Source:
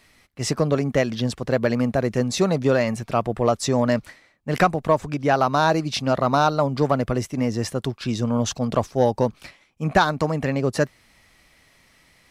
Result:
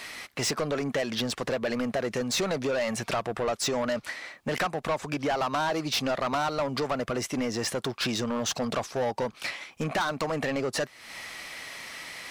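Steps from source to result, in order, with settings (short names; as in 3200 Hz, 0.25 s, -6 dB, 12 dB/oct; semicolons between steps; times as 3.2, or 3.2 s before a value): compressor 5:1, threshold -34 dBFS, peak gain reduction 19.5 dB; overdrive pedal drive 24 dB, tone 7800 Hz, clips at -18.5 dBFS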